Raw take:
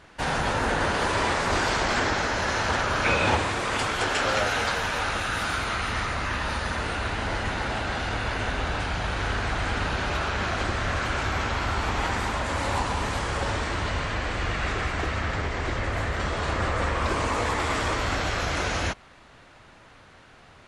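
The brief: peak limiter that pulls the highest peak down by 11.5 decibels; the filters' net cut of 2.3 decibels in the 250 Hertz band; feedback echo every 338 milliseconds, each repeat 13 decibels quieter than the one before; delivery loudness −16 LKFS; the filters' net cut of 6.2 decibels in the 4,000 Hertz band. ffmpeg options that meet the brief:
ffmpeg -i in.wav -af "equalizer=frequency=250:width_type=o:gain=-3,equalizer=frequency=4000:width_type=o:gain=-8.5,alimiter=limit=-22dB:level=0:latency=1,aecho=1:1:338|676|1014:0.224|0.0493|0.0108,volume=15dB" out.wav

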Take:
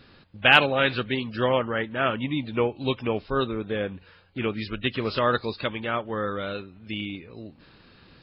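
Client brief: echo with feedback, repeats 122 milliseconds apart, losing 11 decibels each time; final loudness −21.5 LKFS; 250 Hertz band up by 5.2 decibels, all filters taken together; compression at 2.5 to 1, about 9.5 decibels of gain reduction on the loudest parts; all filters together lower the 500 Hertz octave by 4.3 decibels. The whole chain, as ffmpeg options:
ffmpeg -i in.wav -af "equalizer=frequency=250:width_type=o:gain=8,equalizer=frequency=500:width_type=o:gain=-7.5,acompressor=threshold=-26dB:ratio=2.5,aecho=1:1:122|244|366:0.282|0.0789|0.0221,volume=8.5dB" out.wav

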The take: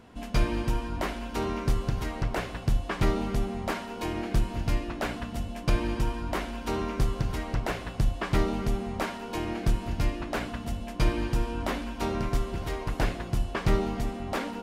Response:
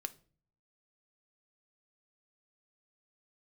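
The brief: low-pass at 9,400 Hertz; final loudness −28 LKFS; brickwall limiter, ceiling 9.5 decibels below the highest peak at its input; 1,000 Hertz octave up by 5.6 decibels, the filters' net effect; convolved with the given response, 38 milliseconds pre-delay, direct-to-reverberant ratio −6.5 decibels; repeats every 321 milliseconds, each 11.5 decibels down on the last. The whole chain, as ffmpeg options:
-filter_complex "[0:a]lowpass=9400,equalizer=frequency=1000:width_type=o:gain=7,alimiter=limit=-20.5dB:level=0:latency=1,aecho=1:1:321|642|963:0.266|0.0718|0.0194,asplit=2[link_01][link_02];[1:a]atrim=start_sample=2205,adelay=38[link_03];[link_02][link_03]afir=irnorm=-1:irlink=0,volume=8.5dB[link_04];[link_01][link_04]amix=inputs=2:normalize=0,volume=-3dB"

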